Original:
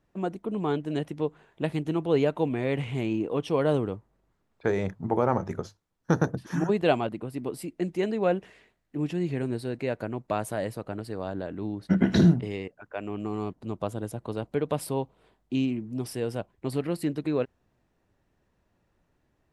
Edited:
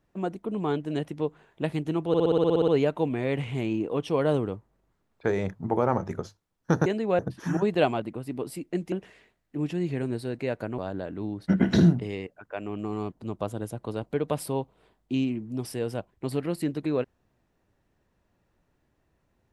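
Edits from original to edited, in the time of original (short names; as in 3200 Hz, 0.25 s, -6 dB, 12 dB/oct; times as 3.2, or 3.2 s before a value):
2.08 stutter 0.06 s, 11 plays
7.99–8.32 move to 6.26
10.18–11.19 cut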